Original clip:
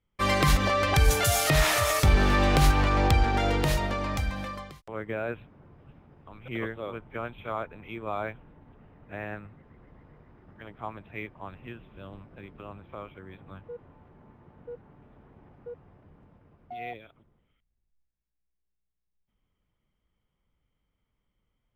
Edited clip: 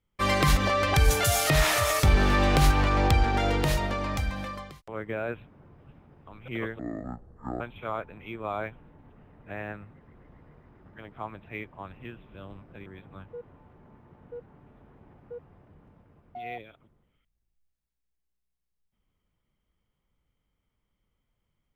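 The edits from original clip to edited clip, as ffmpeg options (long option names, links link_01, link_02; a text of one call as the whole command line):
ffmpeg -i in.wav -filter_complex "[0:a]asplit=4[link_01][link_02][link_03][link_04];[link_01]atrim=end=6.794[link_05];[link_02]atrim=start=6.79:end=7.23,asetpts=PTS-STARTPTS,asetrate=23814,aresample=44100,atrim=end_sample=35933,asetpts=PTS-STARTPTS[link_06];[link_03]atrim=start=7.226:end=12.492[link_07];[link_04]atrim=start=13.218[link_08];[link_05][link_06]acrossfade=duration=0.004:curve1=hsin:curve2=hsin[link_09];[link_09][link_07]acrossfade=duration=0.004:curve1=hsin:curve2=hsin[link_10];[link_10][link_08]acrossfade=duration=0.004:curve1=hsin:curve2=hsin" out.wav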